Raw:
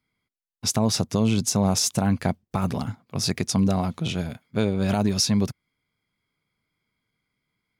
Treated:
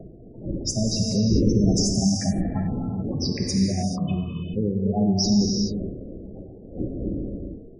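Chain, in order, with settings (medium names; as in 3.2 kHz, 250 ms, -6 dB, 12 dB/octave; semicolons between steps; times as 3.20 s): wind noise 380 Hz -30 dBFS; spectral gate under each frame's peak -10 dB strong; gated-style reverb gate 460 ms flat, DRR -0.5 dB; trim -1.5 dB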